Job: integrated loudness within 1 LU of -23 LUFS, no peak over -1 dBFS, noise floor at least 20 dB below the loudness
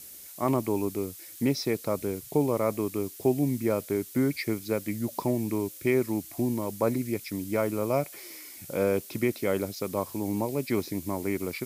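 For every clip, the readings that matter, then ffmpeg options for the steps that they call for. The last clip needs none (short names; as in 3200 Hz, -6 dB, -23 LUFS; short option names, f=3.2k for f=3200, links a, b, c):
noise floor -46 dBFS; noise floor target -49 dBFS; loudness -29.0 LUFS; peak -11.5 dBFS; loudness target -23.0 LUFS
-> -af "afftdn=nr=6:nf=-46"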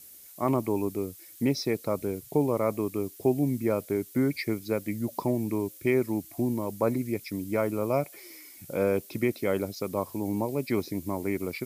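noise floor -50 dBFS; loudness -29.5 LUFS; peak -11.5 dBFS; loudness target -23.0 LUFS
-> -af "volume=6.5dB"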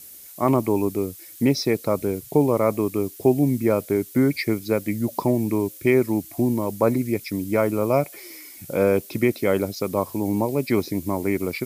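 loudness -23.0 LUFS; peak -5.0 dBFS; noise floor -43 dBFS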